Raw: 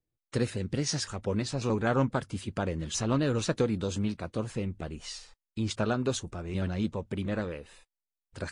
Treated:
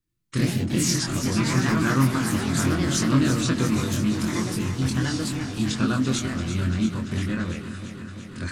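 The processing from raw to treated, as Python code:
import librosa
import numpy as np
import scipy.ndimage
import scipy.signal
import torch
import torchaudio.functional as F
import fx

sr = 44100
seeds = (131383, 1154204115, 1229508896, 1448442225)

y = fx.echo_pitch(x, sr, ms=90, semitones=3, count=3, db_per_echo=-3.0)
y = fx.band_shelf(y, sr, hz=600.0, db=-12.5, octaves=1.3)
y = fx.doubler(y, sr, ms=23.0, db=-3)
y = fx.echo_alternate(y, sr, ms=170, hz=920.0, feedback_pct=86, wet_db=-9.0)
y = y * 10.0 ** (4.0 / 20.0)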